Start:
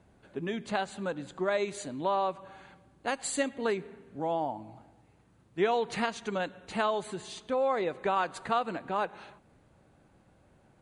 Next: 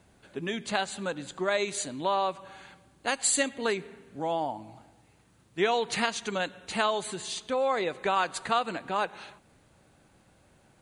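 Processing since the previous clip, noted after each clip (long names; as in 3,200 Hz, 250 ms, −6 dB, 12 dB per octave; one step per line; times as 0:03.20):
high-shelf EQ 2,100 Hz +10.5 dB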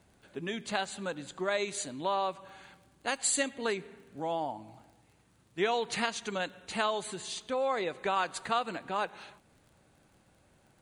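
surface crackle 29 per second −47 dBFS
level −3.5 dB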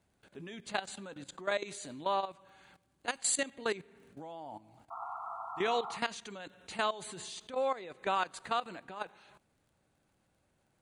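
output level in coarse steps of 15 dB
sound drawn into the spectrogram noise, 0:04.90–0:05.99, 660–1,400 Hz −42 dBFS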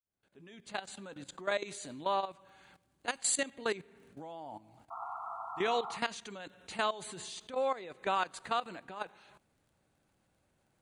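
fade in at the beginning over 1.21 s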